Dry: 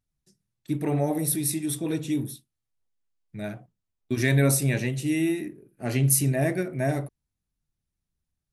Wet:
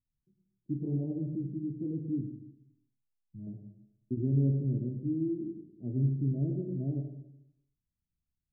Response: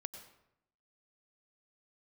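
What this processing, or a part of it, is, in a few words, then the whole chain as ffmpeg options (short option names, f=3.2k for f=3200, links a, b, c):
next room: -filter_complex "[0:a]asettb=1/sr,asplit=3[a][b][c];[a]atrim=end=2.214[d];[b]atrim=start=2.21:end=3.47,asetpts=PTS-STARTPTS,afade=t=in:d=0.004:c=qsin,afade=t=out:st=1.256:d=0.004:c=qsin,equalizer=f=470:t=o:w=1.4:g=-12[e];[c]atrim=start=3.466[f];[d][e]acrossfade=d=0.004:c1=hsin:c2=qsin[g];[g][f]acrossfade=d=0.004:c1=qsin:c2=hsin,lowpass=f=350:w=0.5412,lowpass=f=350:w=1.3066[h];[1:a]atrim=start_sample=2205[i];[h][i]afir=irnorm=-1:irlink=0,volume=-2dB"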